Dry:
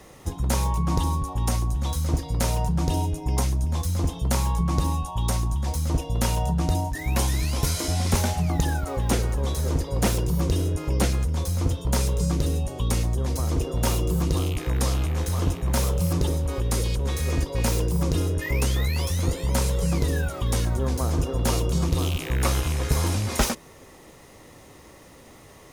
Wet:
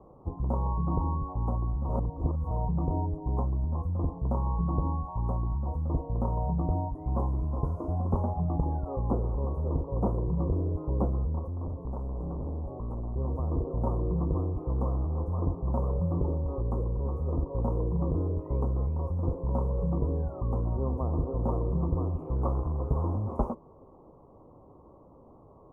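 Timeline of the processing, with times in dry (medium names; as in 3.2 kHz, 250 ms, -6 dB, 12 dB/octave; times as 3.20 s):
1.89–2.51 s: reverse
11.39–13.16 s: hard clipper -27 dBFS
whole clip: elliptic low-pass 1.1 kHz, stop band 40 dB; trim -4 dB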